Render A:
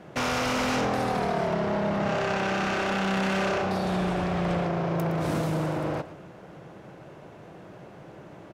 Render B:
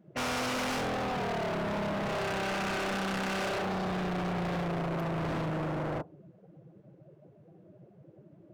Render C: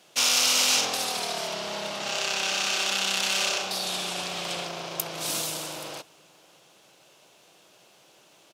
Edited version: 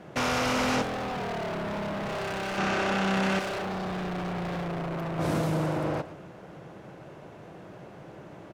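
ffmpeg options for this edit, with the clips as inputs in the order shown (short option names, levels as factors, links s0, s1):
-filter_complex "[1:a]asplit=2[s0][s1];[0:a]asplit=3[s2][s3][s4];[s2]atrim=end=0.822[s5];[s0]atrim=start=0.818:end=2.582[s6];[s3]atrim=start=2.578:end=3.392[s7];[s1]atrim=start=3.388:end=5.192[s8];[s4]atrim=start=5.188[s9];[s5][s6]acrossfade=d=0.004:c1=hsin:c2=hsin[s10];[s10][s7]acrossfade=d=0.004:c1=hsin:c2=hsin[s11];[s11][s8]acrossfade=d=0.004:c1=hsin:c2=hsin[s12];[s12][s9]acrossfade=d=0.004:c1=hsin:c2=hsin"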